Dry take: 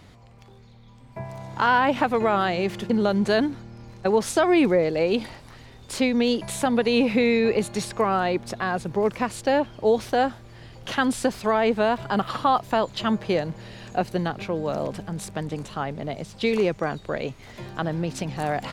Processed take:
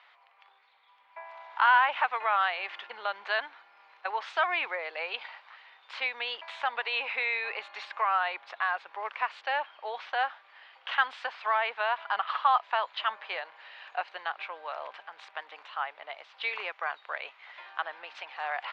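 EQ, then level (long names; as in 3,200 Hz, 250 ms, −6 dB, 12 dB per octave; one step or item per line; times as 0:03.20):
high-pass filter 890 Hz 24 dB per octave
low-pass filter 3,200 Hz 24 dB per octave
0.0 dB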